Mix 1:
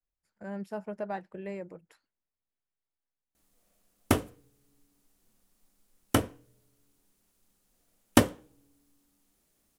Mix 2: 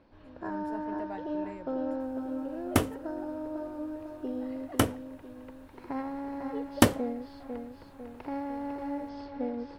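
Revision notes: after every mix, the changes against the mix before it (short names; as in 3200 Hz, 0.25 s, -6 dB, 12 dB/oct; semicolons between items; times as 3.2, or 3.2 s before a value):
speech -6.5 dB; first sound: unmuted; second sound: entry -1.35 s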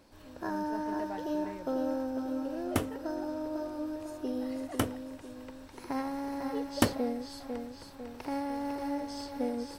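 first sound: remove air absorption 320 m; second sound -5.5 dB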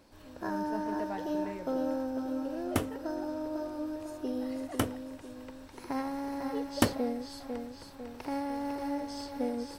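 reverb: on, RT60 1.2 s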